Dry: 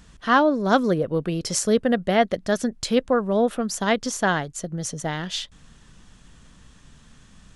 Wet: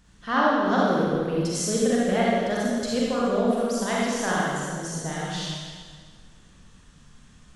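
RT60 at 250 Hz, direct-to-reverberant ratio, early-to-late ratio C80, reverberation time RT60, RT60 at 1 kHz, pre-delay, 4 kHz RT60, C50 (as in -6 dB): 2.1 s, -6.0 dB, -1.0 dB, 1.8 s, 1.7 s, 35 ms, 1.6 s, -4.0 dB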